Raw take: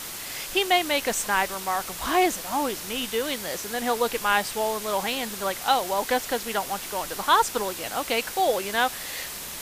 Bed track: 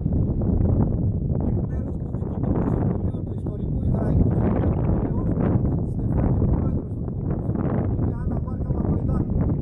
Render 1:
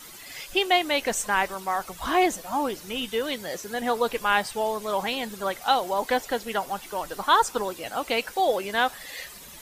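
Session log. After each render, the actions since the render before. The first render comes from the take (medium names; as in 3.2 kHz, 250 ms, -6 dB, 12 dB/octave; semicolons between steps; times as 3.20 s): noise reduction 12 dB, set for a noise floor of -36 dBFS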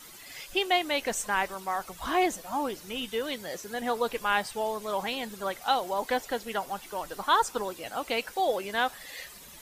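trim -4 dB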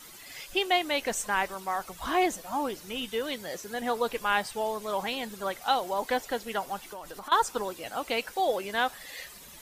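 6.91–7.32 s: compression, threshold -37 dBFS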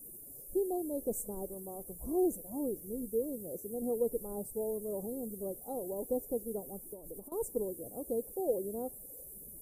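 elliptic band-stop 470–10000 Hz, stop band 80 dB; treble shelf 10 kHz +5.5 dB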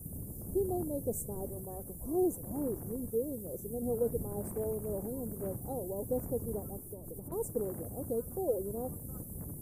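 add bed track -22 dB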